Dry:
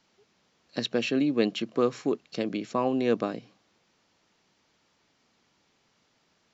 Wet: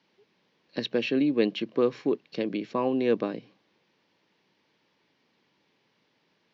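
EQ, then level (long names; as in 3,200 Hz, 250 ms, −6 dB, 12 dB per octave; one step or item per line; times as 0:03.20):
high-frequency loss of the air 150 metres
loudspeaker in its box 150–6,000 Hz, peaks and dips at 230 Hz −3 dB, 700 Hz −7 dB, 1,300 Hz −8 dB
+2.5 dB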